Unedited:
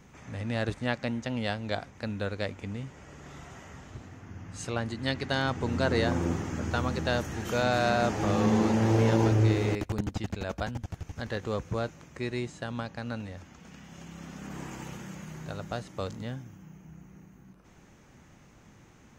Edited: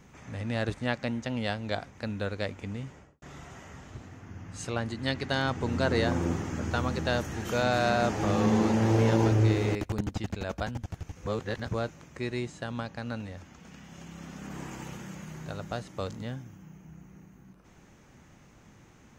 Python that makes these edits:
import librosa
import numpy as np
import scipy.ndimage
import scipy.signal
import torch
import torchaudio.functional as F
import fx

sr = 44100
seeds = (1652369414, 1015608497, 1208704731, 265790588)

y = fx.studio_fade_out(x, sr, start_s=2.89, length_s=0.33)
y = fx.edit(y, sr, fx.reverse_span(start_s=11.17, length_s=0.52), tone=tone)